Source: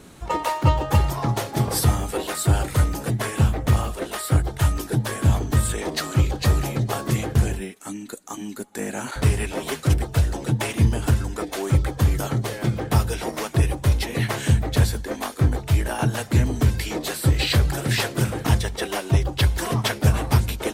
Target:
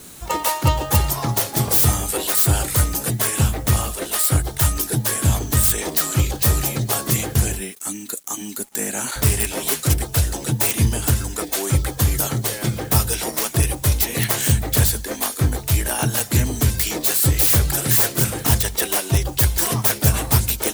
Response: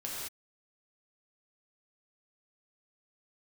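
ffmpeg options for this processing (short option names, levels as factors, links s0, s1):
-filter_complex "[0:a]acrossover=split=1700[s0][s1];[s1]aeval=exprs='(mod(17.8*val(0)+1,2)-1)/17.8':c=same[s2];[s0][s2]amix=inputs=2:normalize=0,acrusher=bits=8:mix=0:aa=0.5,crystalizer=i=3.5:c=0"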